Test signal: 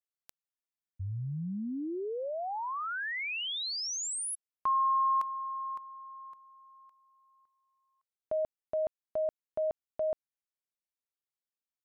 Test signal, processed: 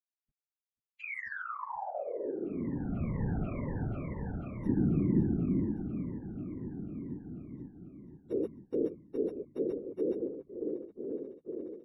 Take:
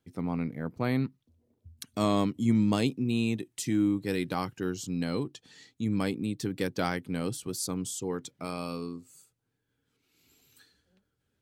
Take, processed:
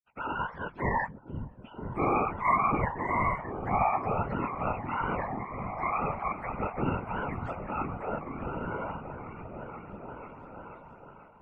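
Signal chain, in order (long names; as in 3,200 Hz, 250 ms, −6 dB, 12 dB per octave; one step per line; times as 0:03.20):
frequency axis turned over on the octave scale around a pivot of 490 Hz
on a send: echo whose low-pass opens from repeat to repeat 490 ms, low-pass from 200 Hz, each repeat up 1 octave, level −3 dB
on the sum: downward expander −44 dBFS
random phases in short frames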